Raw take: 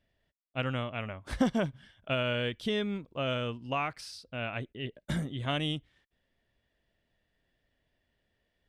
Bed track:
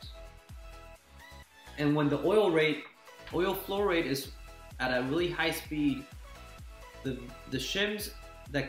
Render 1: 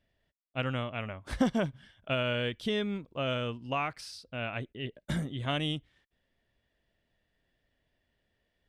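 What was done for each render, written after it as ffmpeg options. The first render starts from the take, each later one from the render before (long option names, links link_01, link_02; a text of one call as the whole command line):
ffmpeg -i in.wav -af anull out.wav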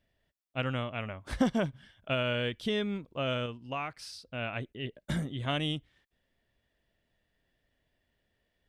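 ffmpeg -i in.wav -filter_complex "[0:a]asplit=3[link_01][link_02][link_03];[link_01]atrim=end=3.462[link_04];[link_02]atrim=start=3.458:end=4.012,asetpts=PTS-STARTPTS,volume=-4dB[link_05];[link_03]atrim=start=4.008[link_06];[link_04][link_05]acrossfade=duration=0.004:curve1=hsin:curve2=hsin[link_07];[link_07][link_06]acrossfade=duration=0.004:curve1=hsin:curve2=hsin" out.wav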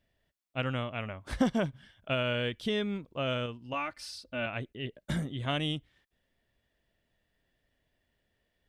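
ffmpeg -i in.wav -filter_complex "[0:a]asettb=1/sr,asplit=3[link_01][link_02][link_03];[link_01]atrim=end=3.734[link_04];[link_02]atrim=start=3.73:end=4.46,asetpts=PTS-STARTPTS,afade=type=in:duration=0.004:curve=qsin,afade=type=out:start_time=0.726:duration=0.004:curve=qsin,aecho=1:1:3.4:0.75,atrim=end_sample=32193[link_05];[link_03]atrim=start=4.456[link_06];[link_04][link_05]acrossfade=duration=0.004:curve1=hsin:curve2=qsin[link_07];[link_07][link_06]acrossfade=duration=0.004:curve1=qsin:curve2=hsin" out.wav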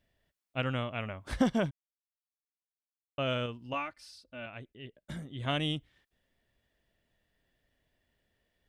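ffmpeg -i in.wav -filter_complex "[0:a]asplit=5[link_01][link_02][link_03][link_04][link_05];[link_01]atrim=end=1.71,asetpts=PTS-STARTPTS,afade=type=out:start_time=1.706:duration=0.004:curve=hsin[link_06];[link_02]atrim=start=1.71:end=3.18,asetpts=PTS-STARTPTS,volume=0[link_07];[link_03]atrim=start=3.18:end=3.96,asetpts=PTS-STARTPTS,afade=type=in:duration=0.004:curve=hsin,afade=type=out:start_time=0.58:duration=0.2:silence=0.354813[link_08];[link_04]atrim=start=3.96:end=5.28,asetpts=PTS-STARTPTS,volume=-9dB[link_09];[link_05]atrim=start=5.28,asetpts=PTS-STARTPTS,afade=type=in:duration=0.2:silence=0.354813[link_10];[link_06][link_07][link_08][link_09][link_10]concat=n=5:v=0:a=1" out.wav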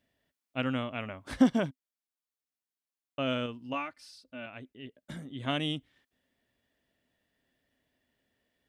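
ffmpeg -i in.wav -af "highpass=frequency=140:poles=1,equalizer=frequency=260:width_type=o:width=0.29:gain=8" out.wav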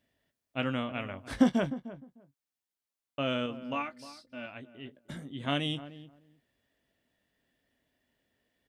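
ffmpeg -i in.wav -filter_complex "[0:a]asplit=2[link_01][link_02];[link_02]adelay=21,volume=-11dB[link_03];[link_01][link_03]amix=inputs=2:normalize=0,asplit=2[link_04][link_05];[link_05]adelay=304,lowpass=frequency=1100:poles=1,volume=-14dB,asplit=2[link_06][link_07];[link_07]adelay=304,lowpass=frequency=1100:poles=1,volume=0.17[link_08];[link_04][link_06][link_08]amix=inputs=3:normalize=0" out.wav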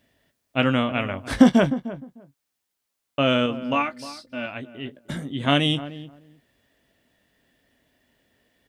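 ffmpeg -i in.wav -af "volume=11dB,alimiter=limit=-2dB:level=0:latency=1" out.wav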